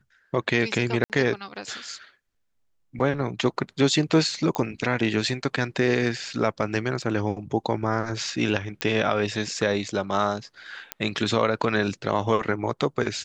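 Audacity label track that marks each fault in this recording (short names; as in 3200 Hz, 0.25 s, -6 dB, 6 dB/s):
1.040000	1.100000	gap 58 ms
4.550000	4.550000	pop -12 dBFS
7.020000	7.020000	gap 3.9 ms
8.810000	8.810000	pop -9 dBFS
10.920000	10.920000	pop -10 dBFS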